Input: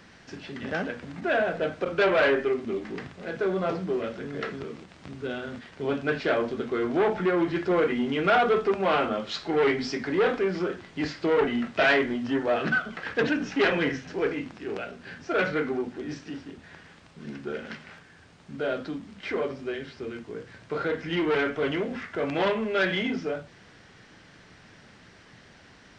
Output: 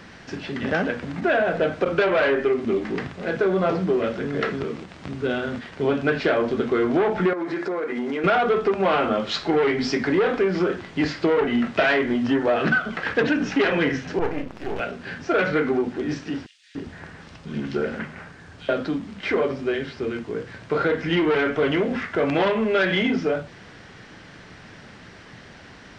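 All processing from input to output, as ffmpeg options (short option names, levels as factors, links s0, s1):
-filter_complex "[0:a]asettb=1/sr,asplit=3[s0][s1][s2];[s0]atrim=end=7.334[s3];[s1]atrim=start=7.33:end=8.24,asetpts=PTS-STARTPTS,afade=t=in:d=0.004:c=qsin,afade=t=out:st=0.906:d=0.004:c=qsin,highpass=300,equalizer=f=3000:w=3.3:g=-10.5,acompressor=threshold=0.0282:ratio=16:attack=3.2:release=140:knee=1:detection=peak[s4];[s2]atrim=start=8.236[s5];[s3][s4]acrossfade=d=0.004:c1=hsin:c2=qsin[s6];[s6][s5]acrossfade=d=0.004:c1=qsin:c2=hsin,asettb=1/sr,asplit=3[s7][s8][s9];[s7]atrim=end=14.194[s10];[s8]atrim=start=14.19:end=14.8,asetpts=PTS-STARTPTS,afade=t=in:d=0.004:c=qsin,afade=t=out:st=0.606:d=0.004:c=qsin,aeval=exprs='max(val(0),0)':c=same,adynamicequalizer=threshold=0.00398:dfrequency=1900:dqfactor=0.7:tfrequency=1900:tqfactor=0.7:attack=5:release=100:ratio=0.375:range=3.5:mode=cutabove:tftype=highshelf[s11];[s9]atrim=start=14.796[s12];[s10][s11]acrossfade=d=0.004:c1=hsin:c2=qsin[s13];[s13][s12]acrossfade=d=0.004:c1=qsin:c2=hsin,asettb=1/sr,asplit=3[s14][s15][s16];[s14]atrim=end=16.464[s17];[s15]atrim=start=16.46:end=18.69,asetpts=PTS-STARTPTS,afade=t=in:d=0.004:c=qsin,afade=t=out:st=2.226:d=0.004:c=qsin,lowshelf=f=130:g=5.5,acrossover=split=2700[s18][s19];[s18]adelay=290[s20];[s20][s19]amix=inputs=2:normalize=0,atrim=end_sample=98343[s21];[s16]atrim=start=18.686[s22];[s17][s21]acrossfade=d=0.004:c1=hsin:c2=qsin[s23];[s23][s22]acrossfade=d=0.004:c1=qsin:c2=hsin,highshelf=f=4600:g=-5,acompressor=threshold=0.0562:ratio=6,volume=2.66"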